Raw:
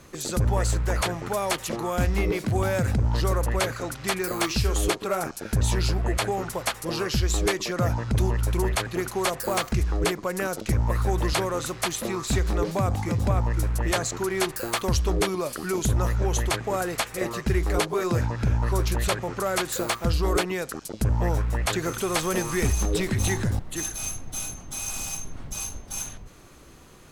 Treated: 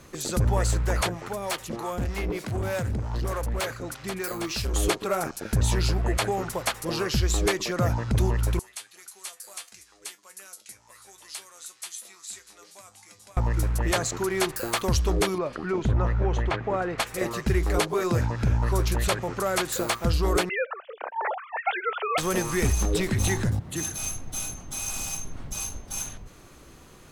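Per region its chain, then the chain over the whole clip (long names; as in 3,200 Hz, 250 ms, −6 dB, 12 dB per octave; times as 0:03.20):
0:01.09–0:04.74: two-band tremolo in antiphase 3.3 Hz, crossover 430 Hz + hard clipping −24 dBFS
0:08.59–0:13.37: low-pass filter 11,000 Hz 24 dB per octave + first difference + tuned comb filter 100 Hz, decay 0.15 s, mix 80%
0:15.38–0:17.00: low-pass filter 2,400 Hz + upward compression, threshold −32 dBFS
0:20.49–0:22.18: three sine waves on the formant tracks + Butterworth high-pass 530 Hz
0:23.49–0:23.98: high-pass filter 83 Hz + parametric band 110 Hz +8 dB 2.1 octaves + downward compressor 2 to 1, threshold −25 dBFS
whole clip: no processing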